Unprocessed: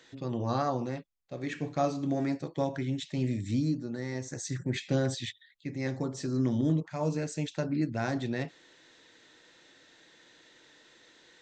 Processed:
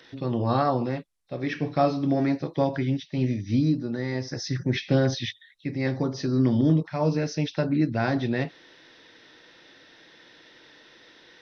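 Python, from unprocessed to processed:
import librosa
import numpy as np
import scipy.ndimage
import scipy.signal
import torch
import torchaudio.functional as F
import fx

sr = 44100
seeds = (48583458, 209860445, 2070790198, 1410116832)

y = fx.freq_compress(x, sr, knee_hz=3600.0, ratio=1.5)
y = fx.upward_expand(y, sr, threshold_db=-46.0, expansion=1.5, at=(2.97, 3.59))
y = y * 10.0 ** (6.5 / 20.0)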